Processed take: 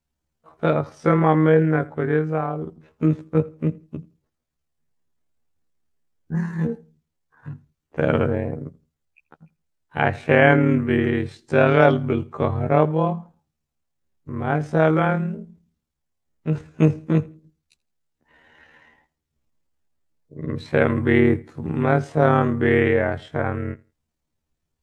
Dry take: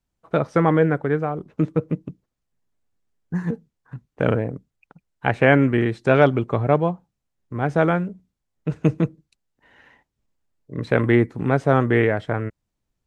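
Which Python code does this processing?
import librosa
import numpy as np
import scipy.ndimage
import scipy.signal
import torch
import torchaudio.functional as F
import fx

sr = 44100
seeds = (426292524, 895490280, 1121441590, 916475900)

p1 = fx.stretch_grains(x, sr, factor=1.9, grain_ms=54.0)
p2 = p1 + fx.echo_feedback(p1, sr, ms=83, feedback_pct=21, wet_db=-23.0, dry=0)
y = p2 * librosa.db_to_amplitude(1.0)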